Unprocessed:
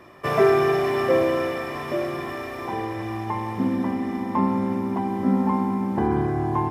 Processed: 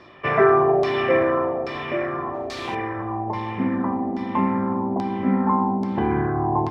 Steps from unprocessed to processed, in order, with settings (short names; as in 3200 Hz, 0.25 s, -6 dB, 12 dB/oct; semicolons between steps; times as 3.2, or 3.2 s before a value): 2.34–2.75 requantised 6-bit, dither triangular; LFO low-pass saw down 1.2 Hz 590–4800 Hz